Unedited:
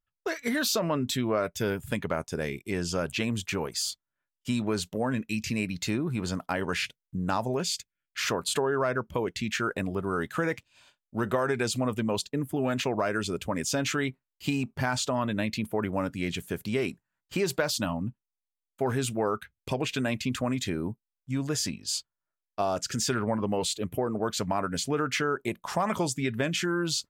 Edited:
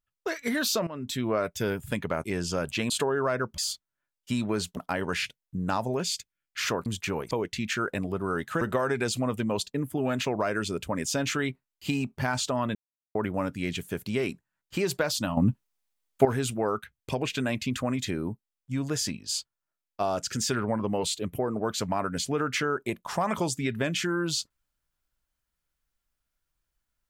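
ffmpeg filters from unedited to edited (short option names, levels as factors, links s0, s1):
-filter_complex "[0:a]asplit=13[s0][s1][s2][s3][s4][s5][s6][s7][s8][s9][s10][s11][s12];[s0]atrim=end=0.87,asetpts=PTS-STARTPTS,afade=t=out:st=0.866:d=0.004:c=hsin:silence=0.158489[s13];[s1]atrim=start=0.87:end=2.242,asetpts=PTS-STARTPTS,afade=t=in:d=0.4:silence=0.158489[s14];[s2]atrim=start=2.648:end=3.312[s15];[s3]atrim=start=8.458:end=9.142[s16];[s4]atrim=start=3.758:end=4.952[s17];[s5]atrim=start=6.368:end=8.462[s18];[s6]atrim=start=3.308:end=3.762[s19];[s7]atrim=start=9.138:end=10.442[s20];[s8]atrim=start=11.198:end=15.34,asetpts=PTS-STARTPTS,afade=t=out:st=4.138:d=0.004:c=hsin[s21];[s9]atrim=start=15.34:end=15.74,asetpts=PTS-STARTPTS,volume=0[s22];[s10]atrim=start=15.74:end=17.962,asetpts=PTS-STARTPTS,afade=t=in:d=0.004:c=hsin[s23];[s11]atrim=start=17.958:end=18.842,asetpts=PTS-STARTPTS,volume=3.16[s24];[s12]atrim=start=18.838[s25];[s13][s14]concat=n=2:v=0:a=1[s26];[s26][s15]acrossfade=d=0.004:c1=hsin:c2=hsin[s27];[s27][s16]acrossfade=d=0.004:c1=hsin:c2=hsin[s28];[s28][s17]acrossfade=d=0.004:c1=hsin:c2=hsin[s29];[s29][s18]acrossfade=d=0.004:c1=hsin:c2=hsin[s30];[s30][s19]acrossfade=d=0.004:c1=hsin:c2=hsin[s31];[s31][s20]acrossfade=d=0.004:c1=hsin:c2=hsin[s32];[s21][s22][s23]concat=n=3:v=0:a=1[s33];[s32][s33]acrossfade=d=0.004:c1=hsin:c2=hsin[s34];[s34][s24]acrossfade=d=0.004:c1=hsin:c2=hsin[s35];[s35][s25]acrossfade=d=0.004:c1=hsin:c2=hsin"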